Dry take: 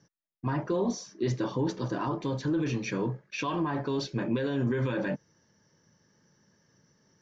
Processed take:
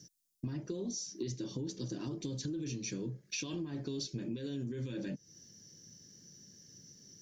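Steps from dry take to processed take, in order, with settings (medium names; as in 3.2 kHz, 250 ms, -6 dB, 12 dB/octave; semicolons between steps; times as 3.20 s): FFT filter 340 Hz 0 dB, 990 Hz -19 dB, 6.1 kHz +11 dB; compression 10:1, threshold -41 dBFS, peak gain reduction 17 dB; trim +5 dB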